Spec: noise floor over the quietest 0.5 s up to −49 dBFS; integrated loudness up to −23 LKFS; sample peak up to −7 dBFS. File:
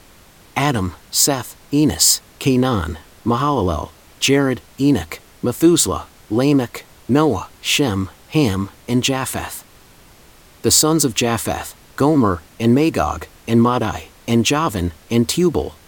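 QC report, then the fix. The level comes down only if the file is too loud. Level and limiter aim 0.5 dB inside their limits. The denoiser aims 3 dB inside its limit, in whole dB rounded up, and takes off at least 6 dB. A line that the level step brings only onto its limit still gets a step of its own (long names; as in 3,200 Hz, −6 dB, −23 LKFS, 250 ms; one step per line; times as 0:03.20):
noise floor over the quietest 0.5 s −47 dBFS: out of spec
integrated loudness −17.5 LKFS: out of spec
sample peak −2.0 dBFS: out of spec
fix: level −6 dB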